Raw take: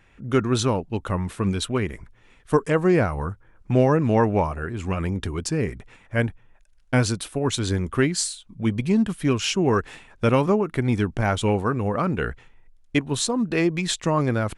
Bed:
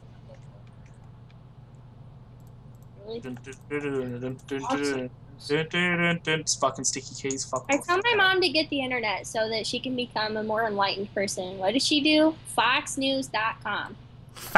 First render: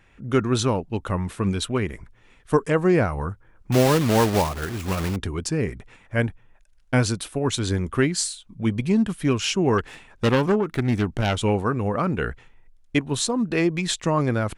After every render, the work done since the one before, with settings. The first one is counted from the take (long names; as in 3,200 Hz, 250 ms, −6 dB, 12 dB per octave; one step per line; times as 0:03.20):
0:03.72–0:05.18: one scale factor per block 3 bits
0:09.78–0:11.36: phase distortion by the signal itself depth 0.26 ms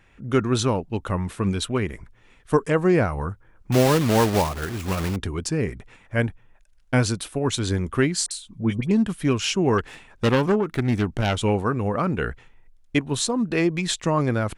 0:08.26–0:08.91: all-pass dispersion highs, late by 51 ms, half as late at 1,700 Hz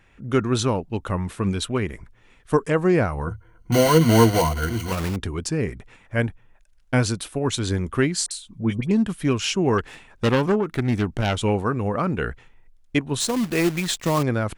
0:03.26–0:04.92: EQ curve with evenly spaced ripples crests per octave 1.9, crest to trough 14 dB
0:13.20–0:14.23: log-companded quantiser 4 bits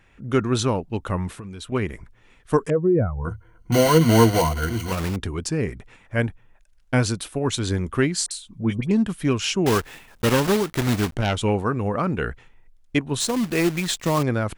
0:01.32–0:01.72: downward compressor 16 to 1, threshold −32 dBFS
0:02.70–0:03.25: expanding power law on the bin magnitudes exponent 2.1
0:09.66–0:11.16: one scale factor per block 3 bits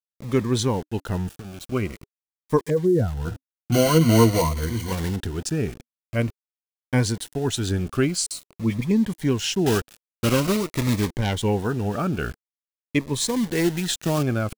centre clipping without the shift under −35 dBFS
phaser whose notches keep moving one way falling 0.47 Hz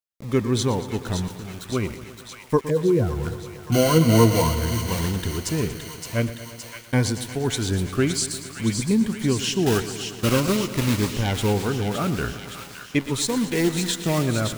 delay with a high-pass on its return 567 ms, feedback 69%, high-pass 1,600 Hz, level −6.5 dB
feedback echo at a low word length 116 ms, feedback 80%, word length 7 bits, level −14 dB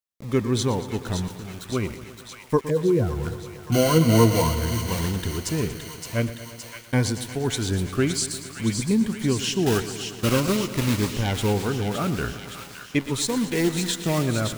level −1 dB